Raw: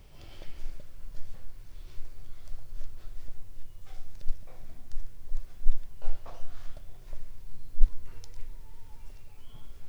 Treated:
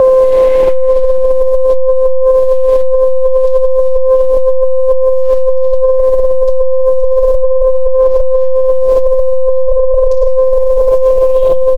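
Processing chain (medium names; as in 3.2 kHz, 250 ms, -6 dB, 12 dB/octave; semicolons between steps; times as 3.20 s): gliding tape speed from 66% -> 102%; tone controls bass -3 dB, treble +4 dB; comb 6.9 ms, depth 92%; reverberation RT60 1.7 s, pre-delay 3 ms, DRR -2.5 dB; compression 6:1, threshold -16 dBFS, peak gain reduction 19.5 dB; peaking EQ 350 Hz +14.5 dB 0.22 oct; whistle 520 Hz -19 dBFS; loudness maximiser +20.5 dB; loudspeaker Doppler distortion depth 0.6 ms; trim -1 dB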